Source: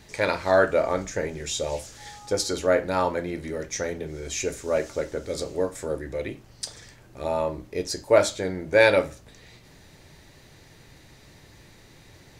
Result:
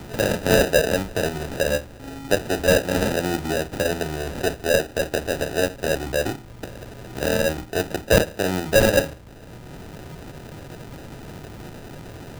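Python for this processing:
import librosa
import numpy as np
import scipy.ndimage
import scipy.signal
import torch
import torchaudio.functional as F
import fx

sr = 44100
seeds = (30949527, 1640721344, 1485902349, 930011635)

p1 = fx.self_delay(x, sr, depth_ms=0.47)
p2 = fx.high_shelf(p1, sr, hz=2500.0, db=-10.0)
p3 = fx.level_steps(p2, sr, step_db=11)
p4 = p2 + (p3 * librosa.db_to_amplitude(-2.5))
p5 = fx.sample_hold(p4, sr, seeds[0], rate_hz=1100.0, jitter_pct=0)
p6 = fx.band_squash(p5, sr, depth_pct=40)
y = p6 * librosa.db_to_amplitude(3.0)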